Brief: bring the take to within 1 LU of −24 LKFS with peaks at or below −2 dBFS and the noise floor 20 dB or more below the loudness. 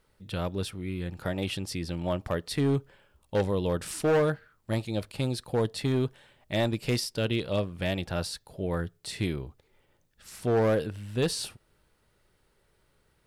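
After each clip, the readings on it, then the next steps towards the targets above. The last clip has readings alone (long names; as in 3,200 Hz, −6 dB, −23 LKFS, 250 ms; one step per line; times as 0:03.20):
share of clipped samples 1.6%; peaks flattened at −20.0 dBFS; integrated loudness −30.0 LKFS; sample peak −20.0 dBFS; target loudness −24.0 LKFS
→ clipped peaks rebuilt −20 dBFS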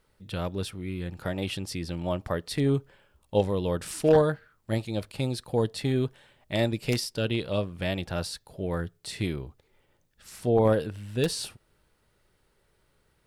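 share of clipped samples 0.0%; integrated loudness −29.0 LKFS; sample peak −11.0 dBFS; target loudness −24.0 LKFS
→ level +5 dB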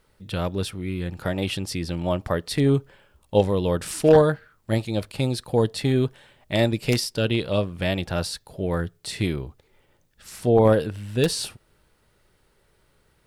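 integrated loudness −24.0 LKFS; sample peak −6.0 dBFS; background noise floor −64 dBFS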